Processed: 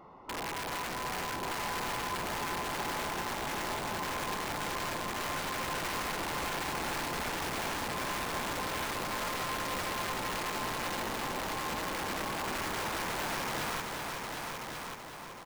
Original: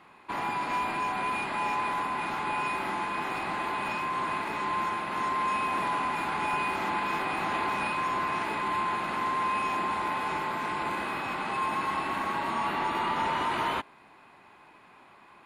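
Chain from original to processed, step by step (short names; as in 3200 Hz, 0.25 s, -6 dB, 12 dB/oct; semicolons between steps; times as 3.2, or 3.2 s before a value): delta modulation 32 kbps, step -47.5 dBFS; in parallel at +0.5 dB: compressor 8:1, threshold -43 dBFS, peak gain reduction 13 dB; on the sum: harmoniser -12 st -13 dB, -5 st -16 dB, +5 st -15 dB; polynomial smoothing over 65 samples; wrapped overs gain 27.5 dB; on a send: multi-head echo 0.379 s, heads all three, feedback 46%, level -8 dB; on the sum: gain -4 dB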